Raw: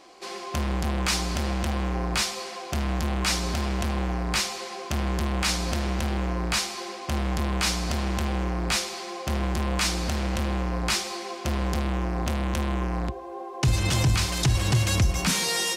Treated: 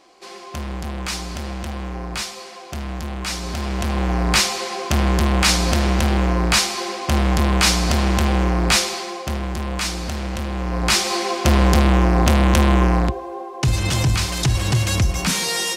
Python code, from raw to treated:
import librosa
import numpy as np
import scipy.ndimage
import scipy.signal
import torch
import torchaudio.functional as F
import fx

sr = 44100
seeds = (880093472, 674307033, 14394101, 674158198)

y = fx.gain(x, sr, db=fx.line((3.3, -1.5), (4.26, 9.0), (8.9, 9.0), (9.42, 1.0), (10.52, 1.0), (11.15, 12.0), (12.89, 12.0), (13.54, 3.5)))